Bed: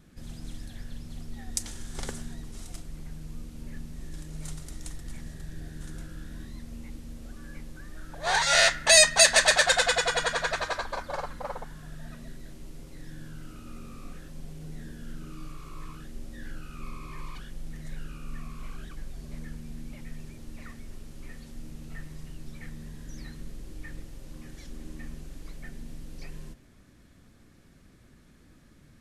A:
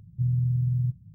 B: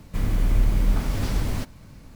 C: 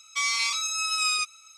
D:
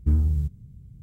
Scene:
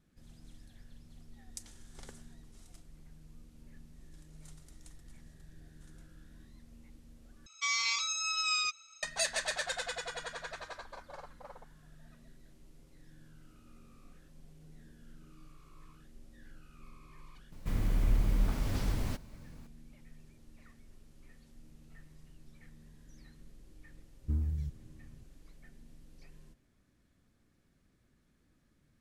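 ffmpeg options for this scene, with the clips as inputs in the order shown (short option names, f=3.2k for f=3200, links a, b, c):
-filter_complex "[0:a]volume=-14.5dB[a];[3:a]aresample=16000,aresample=44100[b];[a]asplit=2[c][d];[c]atrim=end=7.464[e];[b]atrim=end=1.57,asetpts=PTS-STARTPTS,volume=-5.5dB[f];[d]atrim=start=9.026[g];[2:a]atrim=end=2.15,asetpts=PTS-STARTPTS,volume=-8dB,afade=t=in:d=0.004:c=hsin,afade=t=out:st=2.146:d=0.004:c=hsin,adelay=17520[h];[4:a]atrim=end=1.02,asetpts=PTS-STARTPTS,volume=-11.5dB,afade=t=in:d=0.004:c=hsin,afade=t=out:st=1.016:d=0.004:c=hsin,adelay=24220[i];[e][f]acrossfade=d=0.004:c1=hsin:c2=hsin[j];[j][g]acrossfade=d=0.004:c1=hsin:c2=hsin[k];[k][h][i]amix=inputs=3:normalize=0"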